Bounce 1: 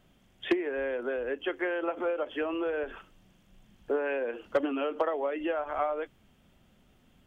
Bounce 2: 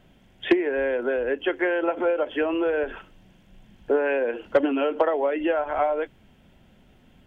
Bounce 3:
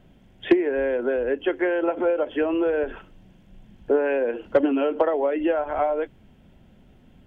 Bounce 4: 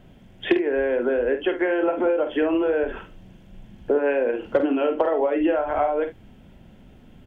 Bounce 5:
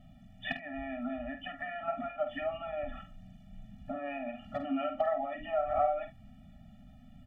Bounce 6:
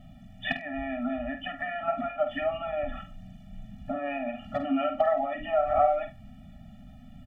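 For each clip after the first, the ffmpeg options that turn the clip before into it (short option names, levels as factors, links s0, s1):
-af "bass=f=250:g=0,treble=f=4000:g=-7,bandreject=f=1200:w=6.7,volume=2.37"
-af "tiltshelf=f=700:g=3.5"
-af "acompressor=threshold=0.0562:ratio=2,aecho=1:1:49|72:0.376|0.15,volume=1.58"
-af "afftfilt=real='re*eq(mod(floor(b*sr/1024/280),2),0)':imag='im*eq(mod(floor(b*sr/1024/280),2),0)':win_size=1024:overlap=0.75,volume=0.562"
-filter_complex "[0:a]asplit=2[s0][s1];[s1]adelay=100,highpass=300,lowpass=3400,asoftclip=type=hard:threshold=0.0501,volume=0.0562[s2];[s0][s2]amix=inputs=2:normalize=0,volume=2"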